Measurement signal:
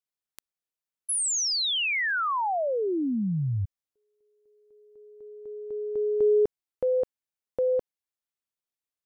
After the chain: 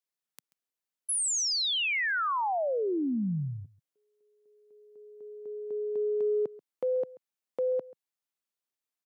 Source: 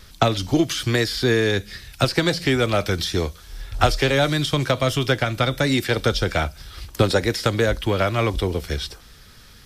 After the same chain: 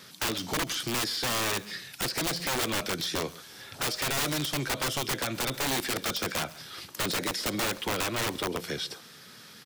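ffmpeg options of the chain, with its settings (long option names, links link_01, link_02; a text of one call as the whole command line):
ffmpeg -i in.wav -filter_complex "[0:a]highpass=frequency=150:width=0.5412,highpass=frequency=150:width=1.3066,aeval=exprs='(mod(6.31*val(0)+1,2)-1)/6.31':channel_layout=same,acompressor=threshold=-25dB:ratio=6:attack=0.28:release=119:knee=6:detection=rms,asplit=2[link_01][link_02];[link_02]aecho=0:1:135:0.0944[link_03];[link_01][link_03]amix=inputs=2:normalize=0" out.wav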